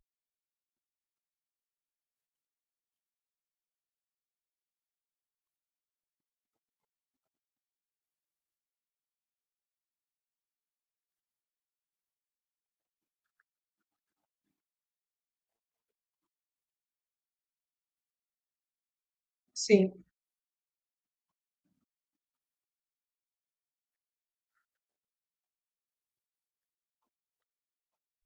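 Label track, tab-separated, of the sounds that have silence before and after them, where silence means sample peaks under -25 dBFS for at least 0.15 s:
19.620000	19.850000	sound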